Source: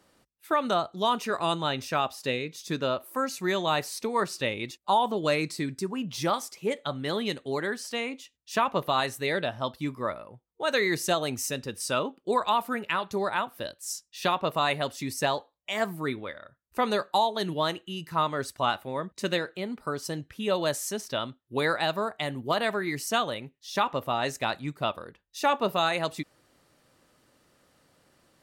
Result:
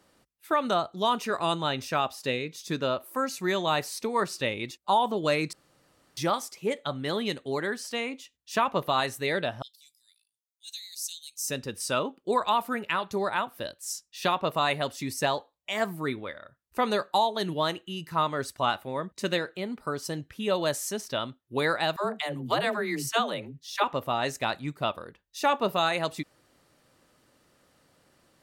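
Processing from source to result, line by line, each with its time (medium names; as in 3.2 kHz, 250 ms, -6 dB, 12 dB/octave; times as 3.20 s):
5.53–6.17 s: room tone
9.62–11.48 s: inverse Chebyshev high-pass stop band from 1.3 kHz, stop band 60 dB
21.96–23.84 s: phase dispersion lows, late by 103 ms, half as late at 340 Hz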